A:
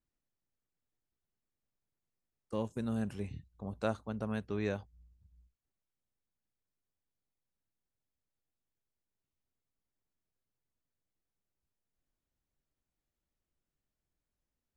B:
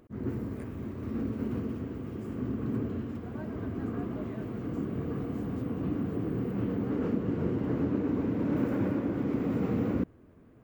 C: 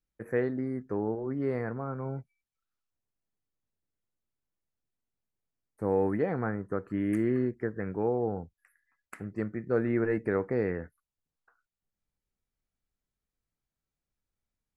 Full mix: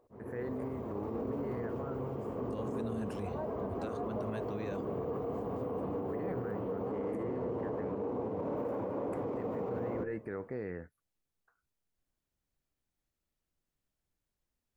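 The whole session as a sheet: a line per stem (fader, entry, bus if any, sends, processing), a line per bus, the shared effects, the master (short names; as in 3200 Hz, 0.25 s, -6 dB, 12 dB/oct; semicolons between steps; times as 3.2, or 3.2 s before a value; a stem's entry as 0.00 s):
+1.0 dB, 0.00 s, bus A, no send, dry
-17.5 dB, 0.00 s, no bus, no send, band shelf 680 Hz +14.5 dB; de-hum 75.94 Hz, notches 8; AGC gain up to 12 dB
-7.0 dB, 0.00 s, bus A, no send, dry
bus A: 0.0 dB, limiter -28.5 dBFS, peak gain reduction 10 dB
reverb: off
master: limiter -28.5 dBFS, peak gain reduction 9.5 dB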